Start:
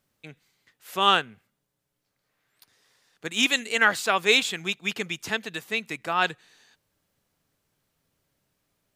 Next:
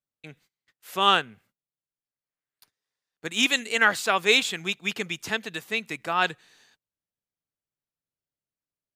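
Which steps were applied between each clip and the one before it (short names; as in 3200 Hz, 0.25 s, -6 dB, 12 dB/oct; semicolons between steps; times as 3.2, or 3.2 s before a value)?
gate -59 dBFS, range -23 dB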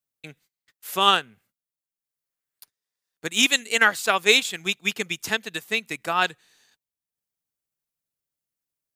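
transient shaper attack +3 dB, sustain -5 dB; high shelf 6500 Hz +10 dB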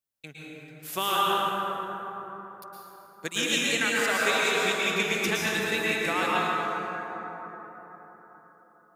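compressor, threshold -23 dBFS, peak gain reduction 11.5 dB; plate-style reverb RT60 4.5 s, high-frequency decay 0.35×, pre-delay 0.1 s, DRR -7 dB; gain -3 dB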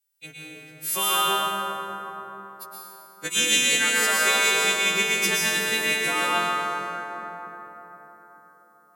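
frequency quantiser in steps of 2 st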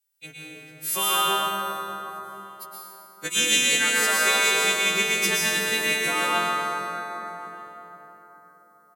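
feedback echo 0.614 s, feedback 26%, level -19.5 dB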